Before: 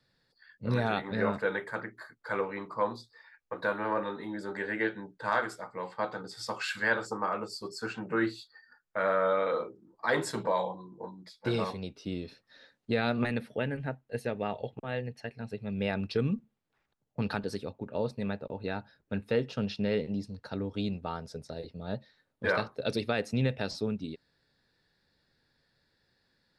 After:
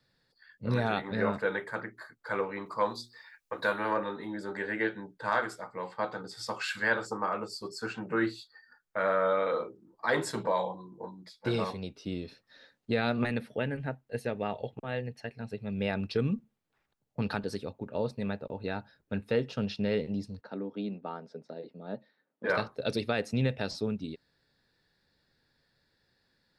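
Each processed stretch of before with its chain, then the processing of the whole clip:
0:02.66–0:03.97: high-shelf EQ 2,700 Hz +10.5 dB + mains-hum notches 60/120/180/240/300/360 Hz
0:20.41–0:22.50: high-pass filter 190 Hz 24 dB per octave + head-to-tape spacing loss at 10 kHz 27 dB
whole clip: no processing

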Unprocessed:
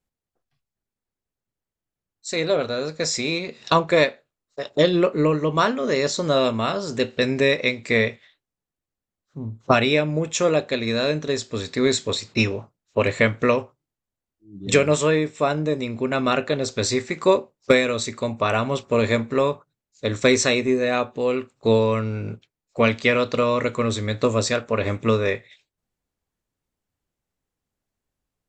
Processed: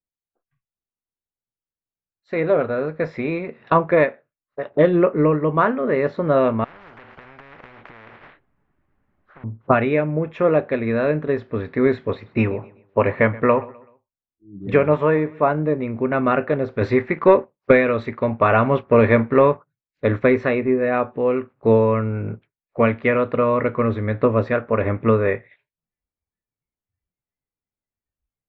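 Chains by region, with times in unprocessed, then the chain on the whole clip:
0:06.64–0:09.44: downward compressor 10 to 1, threshold −33 dBFS + leveller curve on the samples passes 1 + every bin compressed towards the loudest bin 10 to 1
0:12.13–0:15.51: dynamic equaliser 900 Hz, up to +6 dB, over −37 dBFS, Q 2.5 + repeating echo 127 ms, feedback 37%, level −21 dB
0:16.81–0:20.19: high-shelf EQ 2,200 Hz +5 dB + leveller curve on the samples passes 1
whole clip: low-pass filter 2,000 Hz 24 dB per octave; noise reduction from a noise print of the clip's start 15 dB; automatic gain control gain up to 3.5 dB

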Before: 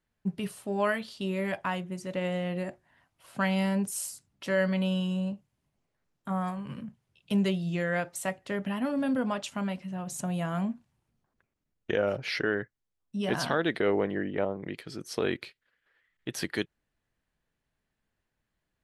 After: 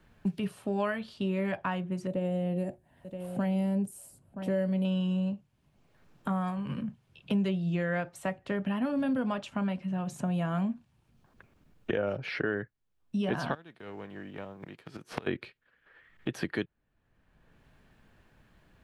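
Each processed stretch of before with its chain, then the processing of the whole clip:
0:02.07–0:04.85: flat-topped bell 2,500 Hz −12.5 dB 3 octaves + single-tap delay 975 ms −18.5 dB
0:13.53–0:15.26: spectral envelope flattened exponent 0.6 + gate with flip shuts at −28 dBFS, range −24 dB
whole clip: bass and treble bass +3 dB, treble −10 dB; notch filter 2,000 Hz, Q 15; multiband upward and downward compressor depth 70%; level −1.5 dB

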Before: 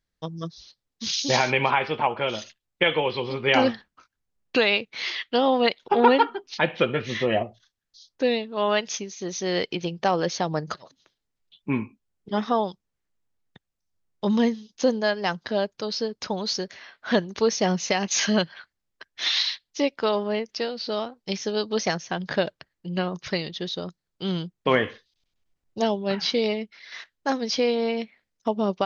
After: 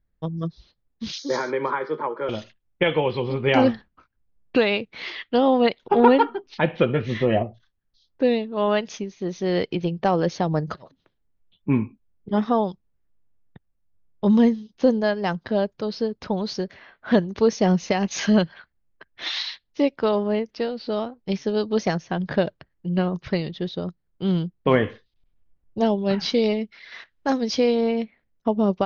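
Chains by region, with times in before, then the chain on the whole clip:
0:01.18–0:02.29: Butterworth high-pass 150 Hz 72 dB per octave + phaser with its sweep stopped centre 730 Hz, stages 6
0:25.98–0:27.81: high-shelf EQ 5,100 Hz +9.5 dB + one half of a high-frequency compander encoder only
whole clip: low-pass that shuts in the quiet parts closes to 2,700 Hz, open at −17.5 dBFS; spectral tilt −2.5 dB per octave

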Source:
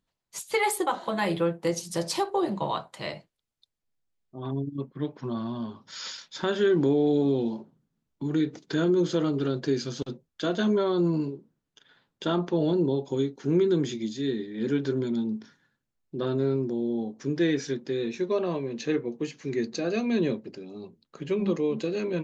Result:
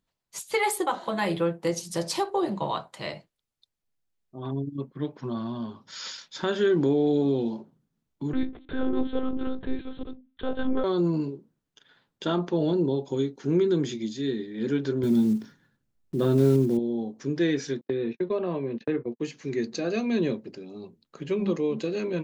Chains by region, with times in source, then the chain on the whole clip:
0:08.33–0:10.84: mains-hum notches 60/120/180/240/300 Hz + dynamic equaliser 3,100 Hz, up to −6 dB, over −49 dBFS, Q 0.77 + one-pitch LPC vocoder at 8 kHz 260 Hz
0:15.03–0:16.79: one scale factor per block 5 bits + low-shelf EQ 430 Hz +9 dB
0:17.81–0:19.20: noise gate −36 dBFS, range −52 dB + high-frequency loss of the air 310 metres + multiband upward and downward compressor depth 70%
whole clip: no processing

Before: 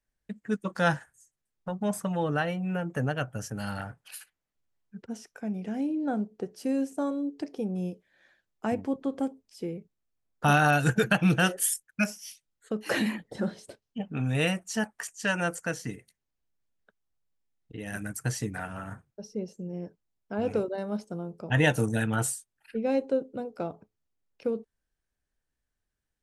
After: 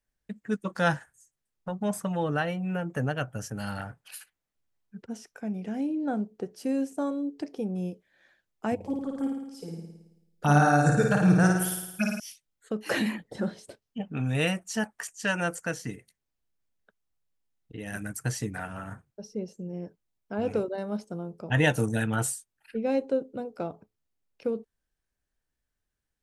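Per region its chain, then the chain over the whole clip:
0:08.75–0:12.20: phaser swept by the level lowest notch 160 Hz, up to 3,000 Hz, full sweep at −20.5 dBFS + flutter between parallel walls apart 9.4 metres, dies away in 0.91 s
whole clip: no processing

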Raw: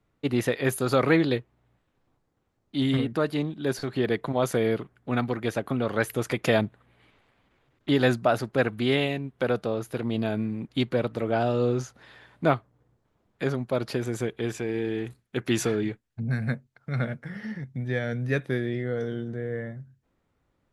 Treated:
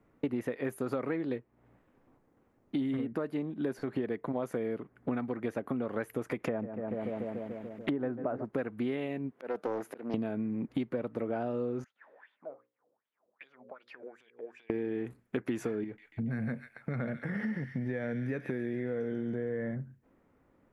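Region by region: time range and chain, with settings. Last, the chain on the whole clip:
0:06.40–0:08.45: treble cut that deepens with the level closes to 1,300 Hz, closed at −22.5 dBFS + feedback echo with a low-pass in the loop 145 ms, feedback 77%, low-pass 1,500 Hz, level −14 dB + one half of a high-frequency compander encoder only
0:09.32–0:10.14: high-pass filter 290 Hz + volume swells 541 ms + highs frequency-modulated by the lows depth 0.48 ms
0:11.84–0:14.70: mains-hum notches 60/120/180/240/300/360/420/480/540 Hz + downward compressor 16 to 1, threshold −36 dBFS + LFO wah 2.6 Hz 500–3,700 Hz, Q 6.5
0:15.84–0:19.75: downward compressor 2.5 to 1, threshold −35 dBFS + delay with a high-pass on its return 140 ms, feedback 58%, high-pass 2,300 Hz, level −4 dB
whole clip: graphic EQ with 10 bands 250 Hz +9 dB, 500 Hz +6 dB, 1,000 Hz +4 dB, 2,000 Hz +5 dB, 4,000 Hz −8 dB, 8,000 Hz −3 dB; downward compressor 12 to 1, threshold −30 dBFS

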